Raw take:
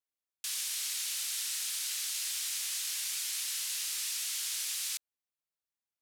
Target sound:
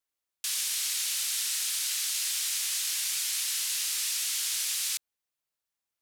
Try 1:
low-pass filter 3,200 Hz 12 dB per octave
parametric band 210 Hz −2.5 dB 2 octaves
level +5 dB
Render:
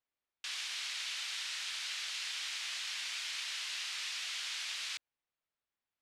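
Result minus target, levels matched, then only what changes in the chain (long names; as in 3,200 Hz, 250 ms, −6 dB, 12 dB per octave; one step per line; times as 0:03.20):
4,000 Hz band +4.0 dB
remove: low-pass filter 3,200 Hz 12 dB per octave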